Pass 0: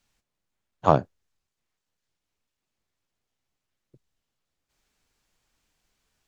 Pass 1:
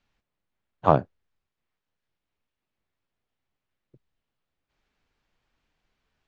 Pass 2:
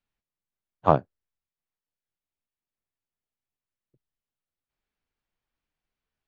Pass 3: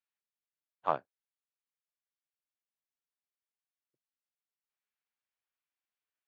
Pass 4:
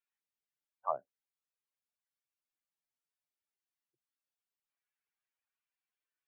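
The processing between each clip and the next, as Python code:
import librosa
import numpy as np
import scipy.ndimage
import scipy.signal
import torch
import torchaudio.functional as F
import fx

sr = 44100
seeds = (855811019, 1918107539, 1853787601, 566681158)

y1 = scipy.signal.sosfilt(scipy.signal.butter(2, 3300.0, 'lowpass', fs=sr, output='sos'), x)
y2 = fx.upward_expand(y1, sr, threshold_db=-38.0, expansion=1.5)
y3 = fx.bandpass_q(y2, sr, hz=2100.0, q=0.62)
y3 = F.gain(torch.from_numpy(y3), -5.5).numpy()
y4 = fx.spec_expand(y3, sr, power=2.4)
y4 = F.gain(torch.from_numpy(y4), -3.5).numpy()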